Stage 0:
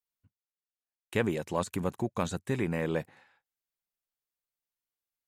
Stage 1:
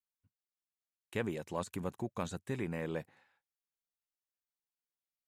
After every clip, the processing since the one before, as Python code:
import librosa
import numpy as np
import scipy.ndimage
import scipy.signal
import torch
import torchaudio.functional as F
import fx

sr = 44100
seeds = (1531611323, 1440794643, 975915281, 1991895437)

y = fx.rider(x, sr, range_db=10, speed_s=2.0)
y = y * 10.0 ** (-6.5 / 20.0)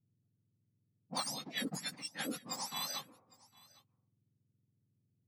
y = fx.octave_mirror(x, sr, pivot_hz=1400.0)
y = fx.env_lowpass(y, sr, base_hz=370.0, full_db=-38.5)
y = y + 10.0 ** (-23.5 / 20.0) * np.pad(y, (int(807 * sr / 1000.0), 0))[:len(y)]
y = y * 10.0 ** (4.0 / 20.0)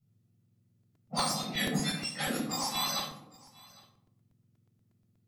y = fx.room_shoebox(x, sr, seeds[0], volume_m3=870.0, walls='furnished', distance_m=6.7)
y = fx.buffer_crackle(y, sr, first_s=0.83, period_s=0.12, block=128, kind='repeat')